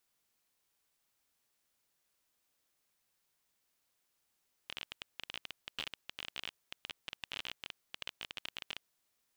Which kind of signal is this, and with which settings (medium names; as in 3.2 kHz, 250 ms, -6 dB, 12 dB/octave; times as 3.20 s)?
random clicks 22 per s -23.5 dBFS 4.10 s